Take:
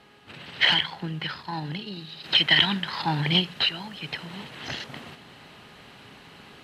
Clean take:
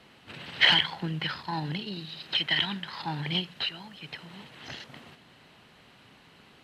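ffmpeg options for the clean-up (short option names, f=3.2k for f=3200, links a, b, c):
-af "bandreject=f=413.1:t=h:w=4,bandreject=f=826.2:t=h:w=4,bandreject=f=1.2393k:t=h:w=4,bandreject=f=1.6524k:t=h:w=4,asetnsamples=n=441:p=0,asendcmd='2.24 volume volume -7.5dB',volume=0dB"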